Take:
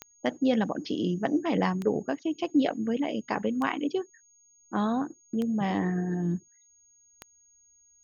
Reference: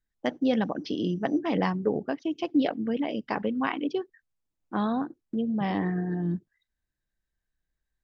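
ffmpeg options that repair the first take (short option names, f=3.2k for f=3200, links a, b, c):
-af "adeclick=t=4,bandreject=f=6.6k:w=30"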